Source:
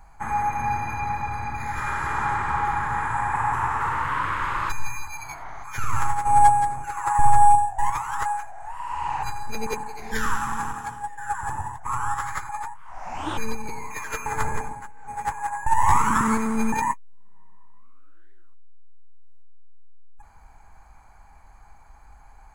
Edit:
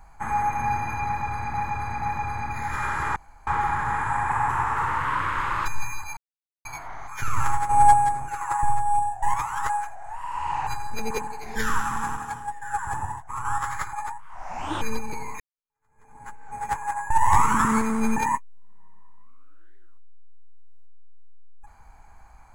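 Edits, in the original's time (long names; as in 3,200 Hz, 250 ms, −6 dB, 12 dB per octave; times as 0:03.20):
0:01.06–0:01.54: repeat, 3 plays
0:02.20–0:02.51: fill with room tone
0:05.21: splice in silence 0.48 s
0:06.97–0:07.85: duck −11.5 dB, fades 0.44 s
0:11.75–0:12.01: clip gain −5 dB
0:13.96–0:14.84: fade in exponential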